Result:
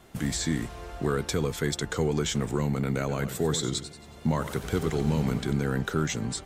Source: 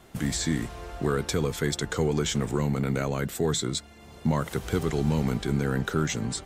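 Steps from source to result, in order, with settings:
0:02.99–0:05.53: feedback echo with a swinging delay time 92 ms, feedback 46%, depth 128 cents, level −11 dB
level −1 dB

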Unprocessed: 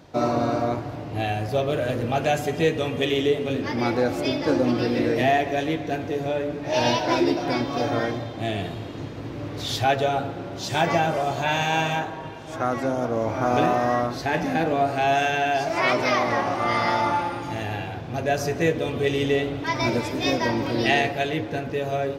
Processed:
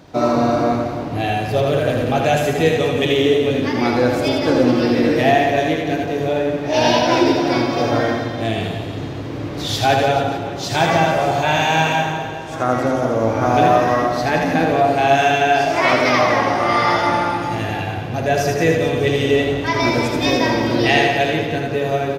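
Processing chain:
reverse bouncing-ball delay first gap 80 ms, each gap 1.2×, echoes 5
level +4.5 dB

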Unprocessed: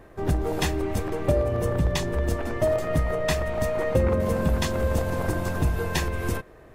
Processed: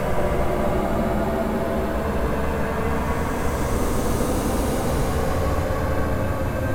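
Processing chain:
low-shelf EQ 110 Hz +6.5 dB
sine wavefolder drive 14 dB, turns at −7 dBFS
flanger 0.94 Hz, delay 1.1 ms, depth 4.4 ms, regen +61%
extreme stretch with random phases 27×, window 0.10 s, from 0:04.81
level −7.5 dB

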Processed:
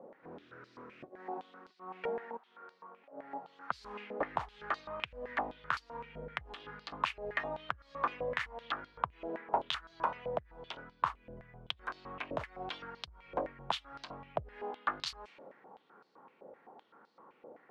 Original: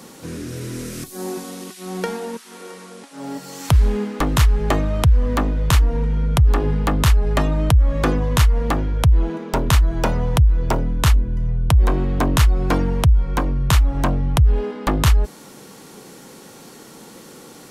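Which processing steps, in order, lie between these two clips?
low-pass that shuts in the quiet parts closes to 860 Hz, open at −9 dBFS
downward compressor, threshold −18 dBFS, peak gain reduction 9 dB
band-pass on a step sequencer 7.8 Hz 600–4,500 Hz
level +1 dB

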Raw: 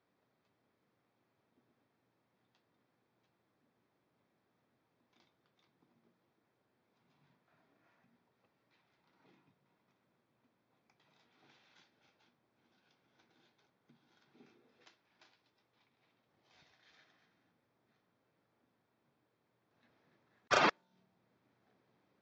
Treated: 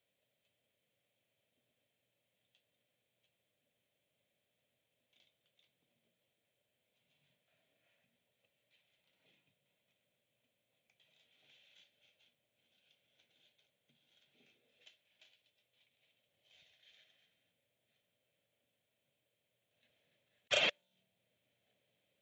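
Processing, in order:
drawn EQ curve 100 Hz 0 dB, 360 Hz −9 dB, 580 Hz +6 dB, 850 Hz −9 dB, 1,200 Hz −11 dB, 3,100 Hz +15 dB, 5,000 Hz −3 dB, 7,300 Hz +11 dB
level −6 dB

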